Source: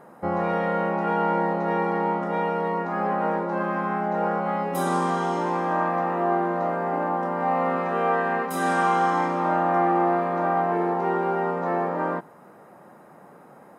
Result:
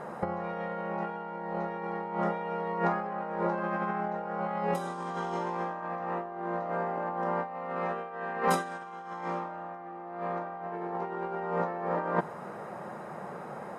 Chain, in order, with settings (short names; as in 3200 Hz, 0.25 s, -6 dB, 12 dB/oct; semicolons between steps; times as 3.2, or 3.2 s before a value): LPF 7700 Hz 12 dB/oct; bell 280 Hz -13.5 dB 0.22 oct; negative-ratio compressor -31 dBFS, ratio -0.5